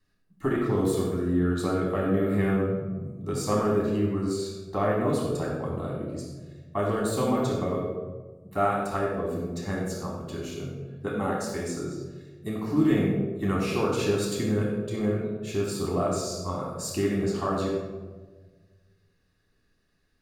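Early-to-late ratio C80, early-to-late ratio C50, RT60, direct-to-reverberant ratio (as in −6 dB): 3.0 dB, 1.0 dB, 1.4 s, −4.0 dB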